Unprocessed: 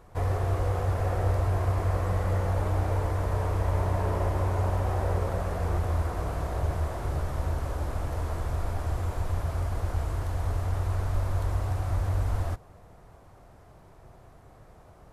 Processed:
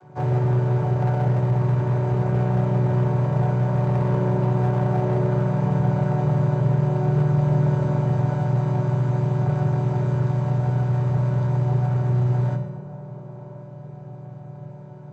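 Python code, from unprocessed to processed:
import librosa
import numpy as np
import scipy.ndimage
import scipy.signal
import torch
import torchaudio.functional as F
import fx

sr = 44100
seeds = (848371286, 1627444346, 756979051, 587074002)

p1 = fx.chord_vocoder(x, sr, chord='minor triad', root=47)
p2 = p1 + 0.36 * np.pad(p1, (int(1.3 * sr / 1000.0), 0))[:len(p1)]
p3 = fx.rider(p2, sr, range_db=10, speed_s=0.5)
p4 = p2 + F.gain(torch.from_numpy(p3), 1.0).numpy()
p5 = np.clip(p4, -10.0 ** (-23.0 / 20.0), 10.0 ** (-23.0 / 20.0))
p6 = p5 + fx.echo_wet_bandpass(p5, sr, ms=1071, feedback_pct=54, hz=510.0, wet_db=-11.5, dry=0)
p7 = fx.rev_fdn(p6, sr, rt60_s=1.6, lf_ratio=0.95, hf_ratio=0.6, size_ms=15.0, drr_db=3.5)
y = F.gain(torch.from_numpy(p7), 2.5).numpy()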